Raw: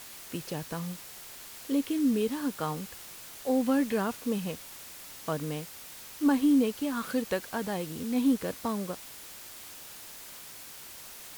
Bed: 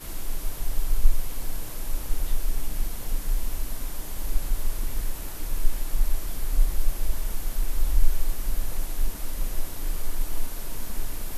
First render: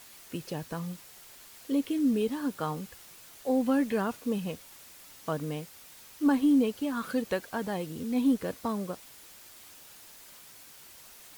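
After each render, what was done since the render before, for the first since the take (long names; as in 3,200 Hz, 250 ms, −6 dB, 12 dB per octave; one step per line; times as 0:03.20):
broadband denoise 6 dB, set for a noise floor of −46 dBFS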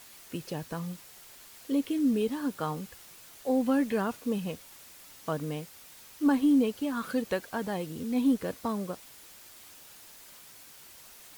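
no processing that can be heard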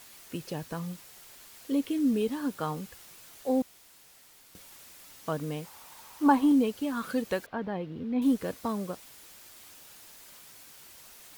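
0:03.62–0:04.55: fill with room tone
0:05.64–0:06.52: parametric band 930 Hz +13.5 dB 0.8 octaves
0:07.46–0:08.22: high-frequency loss of the air 340 metres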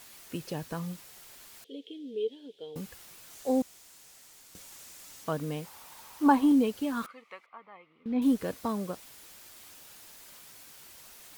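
0:01.64–0:02.76: pair of resonant band-passes 1,200 Hz, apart 2.9 octaves
0:03.30–0:05.24: parametric band 7,000 Hz +5.5 dB 0.86 octaves
0:07.06–0:08.06: pair of resonant band-passes 1,600 Hz, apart 0.8 octaves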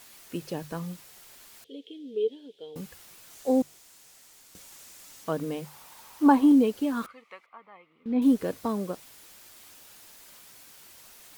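mains-hum notches 50/100/150 Hz
dynamic equaliser 370 Hz, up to +5 dB, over −39 dBFS, Q 0.84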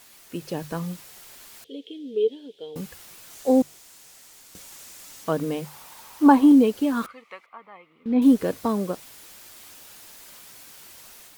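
automatic gain control gain up to 5 dB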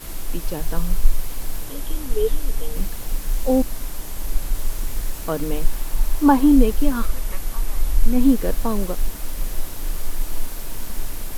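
mix in bed +3 dB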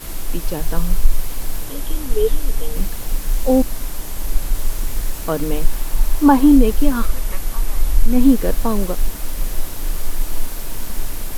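level +3.5 dB
brickwall limiter −1 dBFS, peak gain reduction 3 dB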